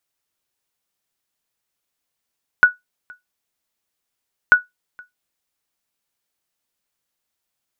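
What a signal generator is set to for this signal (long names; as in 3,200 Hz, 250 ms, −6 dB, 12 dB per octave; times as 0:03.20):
ping with an echo 1,470 Hz, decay 0.16 s, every 1.89 s, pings 2, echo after 0.47 s, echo −29.5 dB −1.5 dBFS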